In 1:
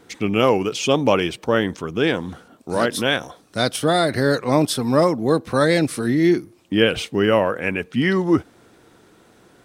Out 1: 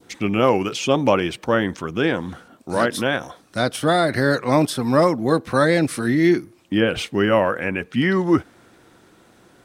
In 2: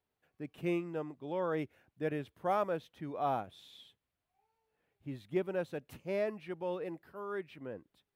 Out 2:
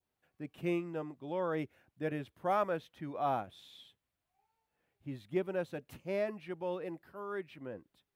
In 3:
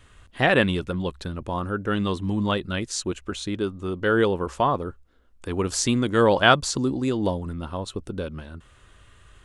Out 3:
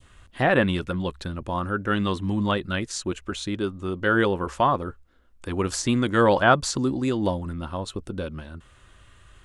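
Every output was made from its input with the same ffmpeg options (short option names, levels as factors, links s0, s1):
-filter_complex "[0:a]bandreject=f=440:w=12,adynamicequalizer=threshold=0.0158:dfrequency=1700:dqfactor=1.1:tfrequency=1700:tqfactor=1.1:attack=5:release=100:ratio=0.375:range=2:mode=boostabove:tftype=bell,acrossover=split=1300[s0][s1];[s1]alimiter=limit=0.133:level=0:latency=1:release=136[s2];[s0][s2]amix=inputs=2:normalize=0"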